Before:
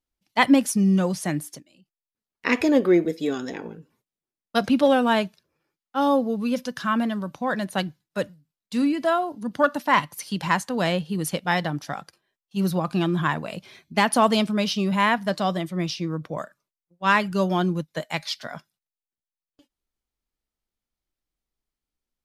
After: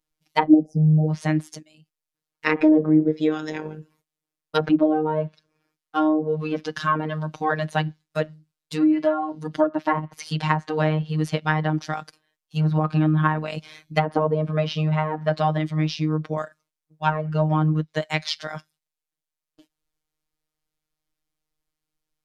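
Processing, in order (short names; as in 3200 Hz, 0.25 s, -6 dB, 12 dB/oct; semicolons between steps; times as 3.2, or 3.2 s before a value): treble ducked by the level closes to 530 Hz, closed at -15.5 dBFS; robotiser 155 Hz; spectral delete 0.48–1.09, 780–4700 Hz; gain +5.5 dB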